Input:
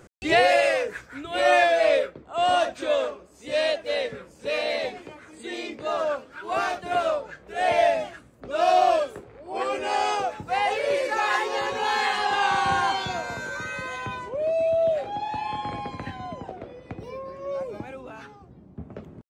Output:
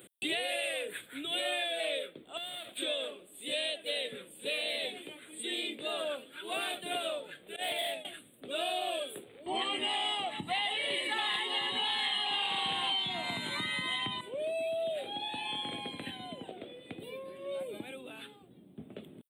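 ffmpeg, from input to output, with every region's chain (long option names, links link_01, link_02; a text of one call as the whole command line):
ffmpeg -i in.wav -filter_complex "[0:a]asettb=1/sr,asplit=3[link_01][link_02][link_03];[link_01]atrim=end=2.374[link_04];[link_02]atrim=start=2.37:end=2.77,asetpts=PTS-STARTPTS,afade=type=in:duration=0.004:curve=qsin,afade=type=out:start_time=0.396:duration=0.004:curve=qsin,acompressor=threshold=-32dB:ratio=6:attack=3.2:release=140:knee=1:detection=peak,aeval=exprs='max(val(0),0)':channel_layout=same[link_05];[link_03]atrim=start=2.766[link_06];[link_04][link_05]acrossfade=duration=0.004:curve1=hsin:curve2=qsin[link_07];[link_07][link_06]acrossfade=duration=0.004:curve1=qsin:curve2=hsin,asettb=1/sr,asplit=3[link_08][link_09][link_10];[link_08]atrim=end=7.564[link_11];[link_09]atrim=start=7.56:end=8.05,asetpts=PTS-STARTPTS,afade=type=in:duration=0.004:curve=qsin,afade=type=out:start_time=0.486:duration=0.004:curve=qsin,agate=range=-33dB:threshold=-20dB:ratio=3:release=100:detection=peak,asoftclip=type=hard:threshold=-22.5dB[link_12];[link_10]atrim=start=8.046[link_13];[link_11][link_12]acrossfade=duration=0.004:curve1=hsin:curve2=qsin[link_14];[link_14][link_13]acrossfade=duration=0.004:curve1=qsin:curve2=hsin,asettb=1/sr,asplit=3[link_15][link_16][link_17];[link_15]atrim=end=9.464[link_18];[link_16]atrim=start=9.46:end=14.21,asetpts=PTS-STARTPTS,afade=type=in:duration=0.004:curve=qsin,afade=type=out:start_time=4.746:duration=0.004:curve=qsin,aecho=1:1:1:0.81,atrim=end_sample=209475,aeval=exprs='0.398*sin(PI/2*2*val(0)/0.398)':channel_layout=same,lowpass=5800[link_19];[link_17]atrim=start=14.206[link_20];[link_18][link_19]acrossfade=duration=0.004:curve1=hsin:curve2=qsin[link_21];[link_21][link_20]acrossfade=duration=0.004:curve1=qsin:curve2=hsin,firequalizer=gain_entry='entry(280,0);entry(1000,-11);entry(3500,14);entry(5600,-29);entry(8500,15)':delay=0.05:min_phase=1,acompressor=threshold=-28dB:ratio=6,highpass=220,volume=-3dB" out.wav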